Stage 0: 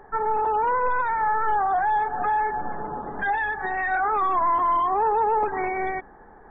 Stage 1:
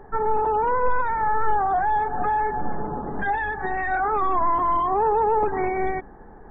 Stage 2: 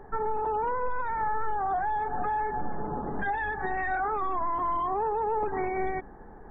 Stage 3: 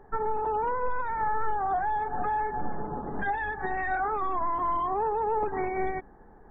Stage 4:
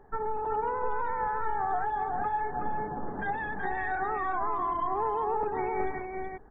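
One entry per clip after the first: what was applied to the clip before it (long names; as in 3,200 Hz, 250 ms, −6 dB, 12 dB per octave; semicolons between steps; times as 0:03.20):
low-shelf EQ 480 Hz +11 dB; level −2.5 dB
downward compressor 3 to 1, threshold −24 dBFS, peak gain reduction 7.5 dB; level −2.5 dB
expander for the loud parts 1.5 to 1, over −40 dBFS; level +2 dB
single-tap delay 373 ms −4 dB; level −3 dB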